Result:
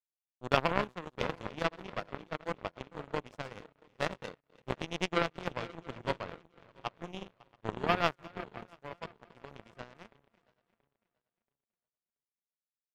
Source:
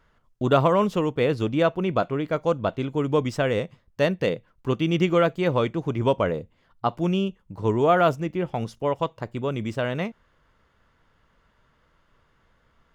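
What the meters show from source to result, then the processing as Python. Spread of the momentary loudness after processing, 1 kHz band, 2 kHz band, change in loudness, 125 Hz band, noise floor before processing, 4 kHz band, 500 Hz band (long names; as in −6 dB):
20 LU, −10.0 dB, −6.5 dB, −12.0 dB, −16.5 dB, −65 dBFS, −6.5 dB, −15.0 dB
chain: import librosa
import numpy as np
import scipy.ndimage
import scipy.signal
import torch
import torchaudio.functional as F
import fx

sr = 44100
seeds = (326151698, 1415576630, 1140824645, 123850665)

y = fx.reverse_delay_fb(x, sr, ms=340, feedback_pct=78, wet_db=-8.0)
y = fx.echo_stepped(y, sr, ms=156, hz=1300.0, octaves=0.7, feedback_pct=70, wet_db=-11)
y = fx.power_curve(y, sr, exponent=3.0)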